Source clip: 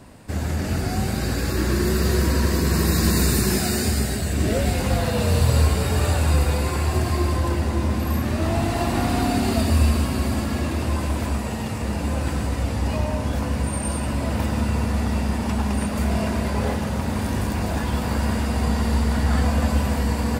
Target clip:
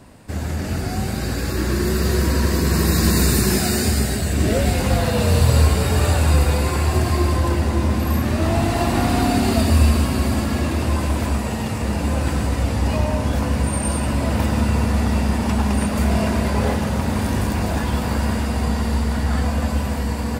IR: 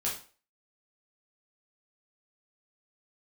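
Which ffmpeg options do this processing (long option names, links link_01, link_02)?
-af "dynaudnorm=framelen=230:gausssize=21:maxgain=4dB"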